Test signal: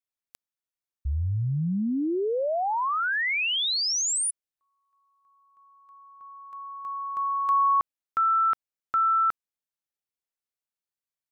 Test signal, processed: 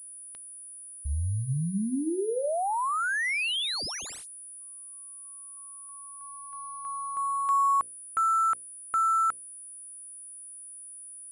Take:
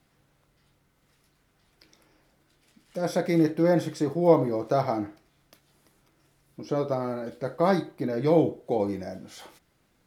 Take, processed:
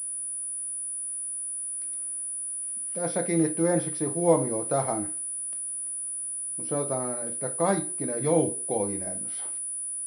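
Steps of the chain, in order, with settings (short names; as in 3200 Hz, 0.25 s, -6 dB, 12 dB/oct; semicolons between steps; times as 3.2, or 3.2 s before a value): notches 60/120/180/240/300/360/420/480/540 Hz; pulse-width modulation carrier 9800 Hz; gain -2 dB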